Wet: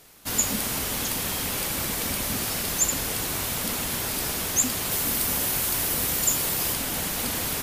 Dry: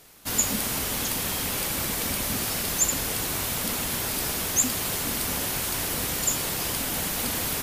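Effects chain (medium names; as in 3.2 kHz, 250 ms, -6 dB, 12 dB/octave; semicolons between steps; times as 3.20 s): 4.91–6.74 s: treble shelf 11 kHz +7.5 dB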